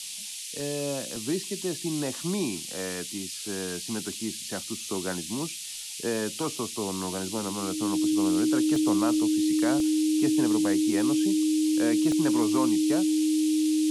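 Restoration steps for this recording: notch 310 Hz, Q 30; interpolate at 0.6/1.16/2.23/8.76/9.8/12.12, 1.4 ms; noise print and reduce 30 dB

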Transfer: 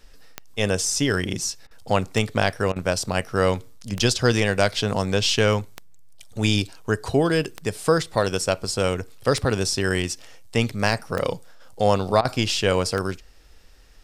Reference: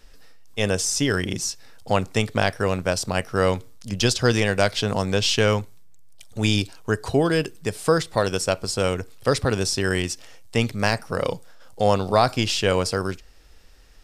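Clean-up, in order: de-click; interpolate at 1.67/2.72/12.21, 38 ms

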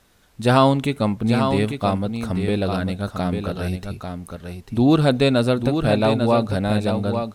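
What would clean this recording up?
expander -33 dBFS, range -21 dB; inverse comb 0.846 s -7 dB

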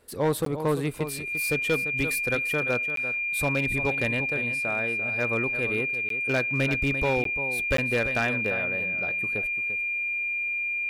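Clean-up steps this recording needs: clip repair -18 dBFS; notch 2400 Hz, Q 30; interpolate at 0.45/2.96/6.09/7.24/7.77, 13 ms; inverse comb 0.344 s -11.5 dB

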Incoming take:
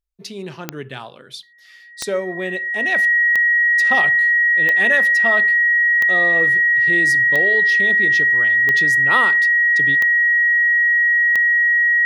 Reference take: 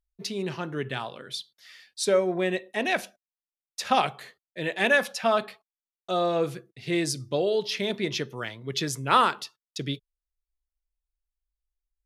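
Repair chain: de-click; notch 1900 Hz, Q 30

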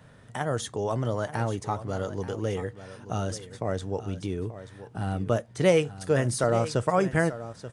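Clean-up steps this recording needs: inverse comb 0.883 s -13.5 dB

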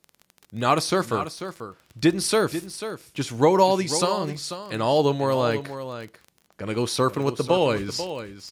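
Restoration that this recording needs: de-click; inverse comb 0.491 s -11 dB

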